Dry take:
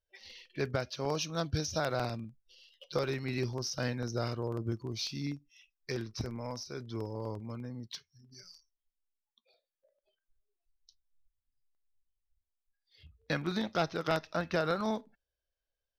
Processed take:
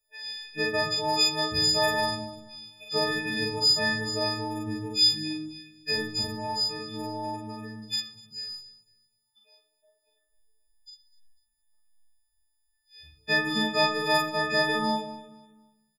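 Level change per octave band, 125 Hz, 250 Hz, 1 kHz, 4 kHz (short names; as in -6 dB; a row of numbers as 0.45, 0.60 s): -2.0, +4.5, +9.5, +17.0 dB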